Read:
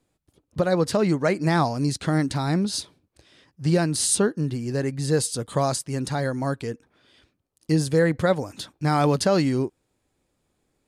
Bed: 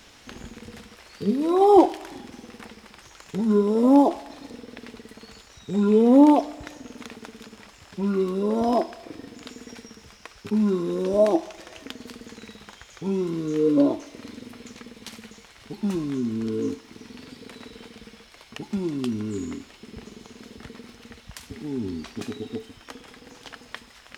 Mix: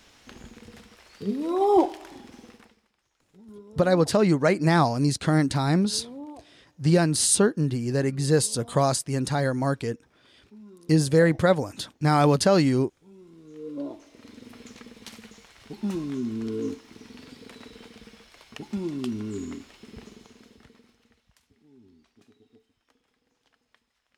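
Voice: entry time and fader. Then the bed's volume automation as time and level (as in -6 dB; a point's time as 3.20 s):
3.20 s, +1.0 dB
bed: 2.49 s -5 dB
2.93 s -26 dB
13.10 s -26 dB
14.57 s -3 dB
20.04 s -3 dB
21.57 s -26 dB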